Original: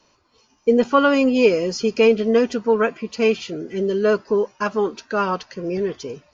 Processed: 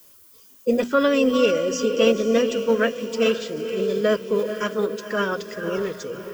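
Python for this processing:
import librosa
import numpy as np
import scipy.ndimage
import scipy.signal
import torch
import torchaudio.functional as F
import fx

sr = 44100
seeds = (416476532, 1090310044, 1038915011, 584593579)

y = fx.peak_eq(x, sr, hz=830.0, db=-14.5, octaves=0.37)
y = fx.hum_notches(y, sr, base_hz=60, count=4)
y = fx.echo_diffused(y, sr, ms=487, feedback_pct=45, wet_db=-9)
y = fx.dmg_noise_colour(y, sr, seeds[0], colour='violet', level_db=-50.0)
y = fx.formant_shift(y, sr, semitones=2)
y = y * librosa.db_to_amplitude(-1.5)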